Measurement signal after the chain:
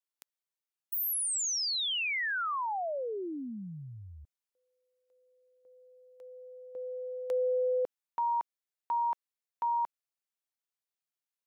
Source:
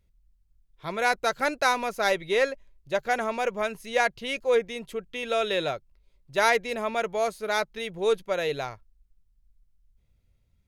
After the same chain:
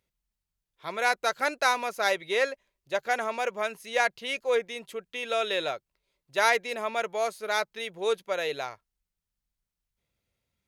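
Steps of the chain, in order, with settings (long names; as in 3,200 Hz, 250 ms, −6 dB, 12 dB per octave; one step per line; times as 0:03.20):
high-pass filter 500 Hz 6 dB per octave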